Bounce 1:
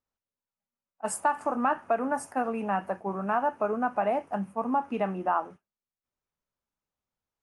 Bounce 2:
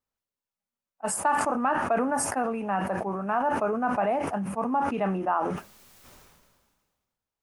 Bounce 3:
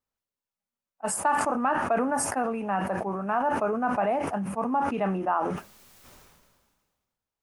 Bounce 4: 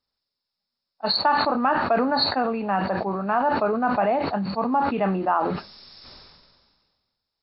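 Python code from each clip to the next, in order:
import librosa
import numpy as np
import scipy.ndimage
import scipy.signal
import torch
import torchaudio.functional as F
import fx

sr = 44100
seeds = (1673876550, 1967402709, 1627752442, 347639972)

y1 = fx.sustainer(x, sr, db_per_s=35.0)
y2 = y1
y3 = fx.freq_compress(y2, sr, knee_hz=3400.0, ratio=4.0)
y3 = y3 * 10.0 ** (4.0 / 20.0)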